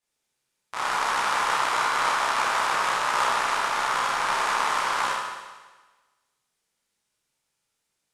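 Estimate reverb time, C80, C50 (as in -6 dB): 1.3 s, 1.5 dB, -1.5 dB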